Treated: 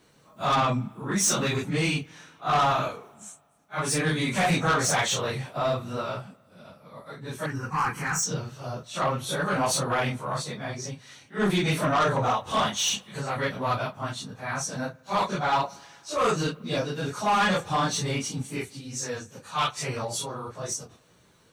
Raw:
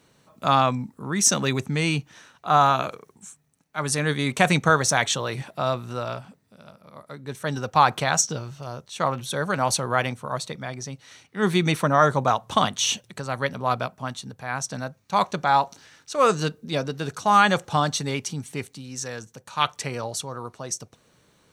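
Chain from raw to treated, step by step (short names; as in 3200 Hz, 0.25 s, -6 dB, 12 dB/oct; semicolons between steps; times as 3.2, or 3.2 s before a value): phase scrambler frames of 0.1 s; soft clip -18 dBFS, distortion -11 dB; 7.46–8.23 fixed phaser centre 1500 Hz, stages 4; on a send: reverb RT60 1.9 s, pre-delay 50 ms, DRR 23.5 dB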